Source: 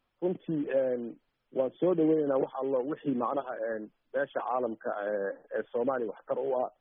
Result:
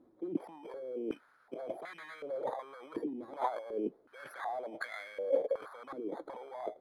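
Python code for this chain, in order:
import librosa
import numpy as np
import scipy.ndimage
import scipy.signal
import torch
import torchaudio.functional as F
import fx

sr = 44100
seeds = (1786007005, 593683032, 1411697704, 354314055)

y = fx.bit_reversed(x, sr, seeds[0], block=16)
y = fx.fold_sine(y, sr, drive_db=10, ceiling_db=-16.0)
y = fx.over_compress(y, sr, threshold_db=-33.0, ratio=-1.0)
y = fx.filter_held_bandpass(y, sr, hz=2.7, low_hz=320.0, high_hz=1900.0)
y = F.gain(torch.from_numpy(y), 2.0).numpy()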